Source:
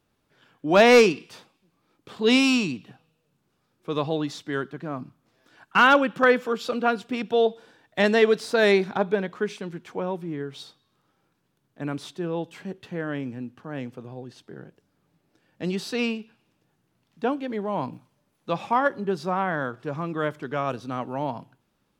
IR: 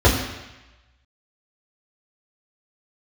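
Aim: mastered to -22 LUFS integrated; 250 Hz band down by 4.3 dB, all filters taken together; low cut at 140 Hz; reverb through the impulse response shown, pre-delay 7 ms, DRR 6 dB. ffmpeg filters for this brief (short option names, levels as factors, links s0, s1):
-filter_complex "[0:a]highpass=140,equalizer=f=250:t=o:g=-4.5,asplit=2[s0][s1];[1:a]atrim=start_sample=2205,adelay=7[s2];[s1][s2]afir=irnorm=-1:irlink=0,volume=0.0376[s3];[s0][s3]amix=inputs=2:normalize=0,volume=1.12"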